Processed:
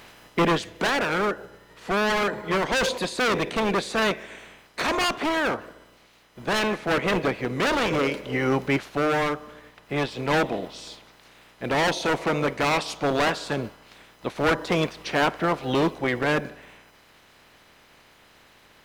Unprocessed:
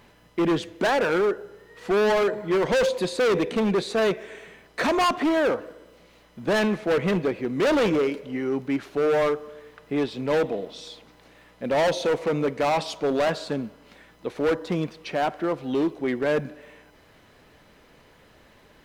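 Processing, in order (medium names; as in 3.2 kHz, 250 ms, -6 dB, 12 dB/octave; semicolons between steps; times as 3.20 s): spectral peaks clipped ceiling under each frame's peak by 14 dB; gain riding 0.5 s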